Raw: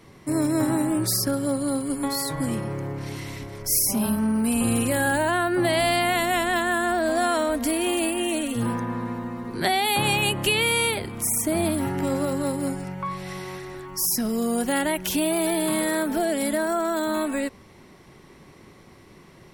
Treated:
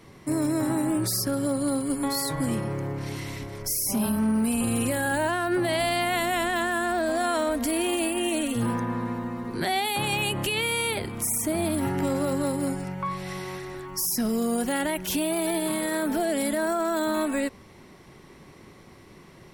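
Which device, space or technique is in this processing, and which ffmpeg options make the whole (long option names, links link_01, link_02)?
limiter into clipper: -af "alimiter=limit=-17.5dB:level=0:latency=1:release=46,asoftclip=type=hard:threshold=-19dB"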